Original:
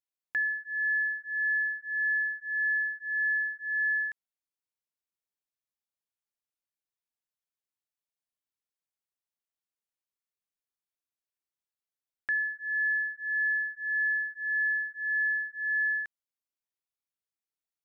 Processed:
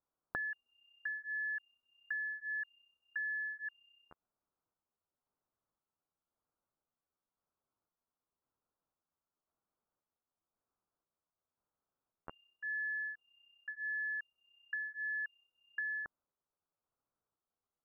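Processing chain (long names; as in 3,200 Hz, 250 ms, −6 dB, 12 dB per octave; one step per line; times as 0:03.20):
pitch shifter gated in a rhythm +8.5 semitones, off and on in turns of 526 ms
Butterworth low-pass 1,400 Hz 48 dB per octave
downward compressor, threshold −48 dBFS, peak gain reduction 7 dB
level +11 dB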